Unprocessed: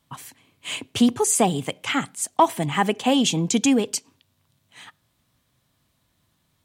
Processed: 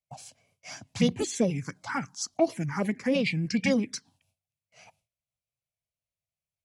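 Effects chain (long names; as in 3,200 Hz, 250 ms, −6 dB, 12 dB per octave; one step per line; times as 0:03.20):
noise gate with hold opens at −49 dBFS
phaser swept by the level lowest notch 290 Hz, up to 2,500 Hz, full sweep at −14 dBFS
formants moved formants −6 semitones
level −4.5 dB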